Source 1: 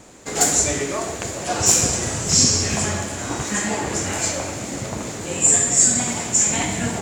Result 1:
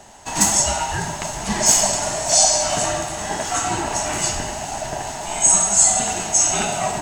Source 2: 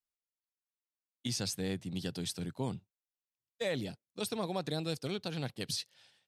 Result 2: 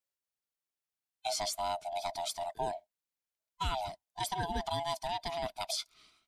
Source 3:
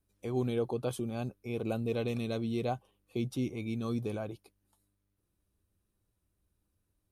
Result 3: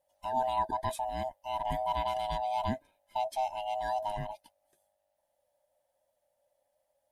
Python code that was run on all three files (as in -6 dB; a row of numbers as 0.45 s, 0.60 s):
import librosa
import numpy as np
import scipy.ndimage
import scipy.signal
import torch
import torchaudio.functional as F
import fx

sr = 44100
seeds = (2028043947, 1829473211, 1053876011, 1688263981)

y = fx.band_swap(x, sr, width_hz=500)
y = y * 10.0 ** (1.0 / 20.0)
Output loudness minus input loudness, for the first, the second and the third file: +1.0 LU, +1.0 LU, +1.5 LU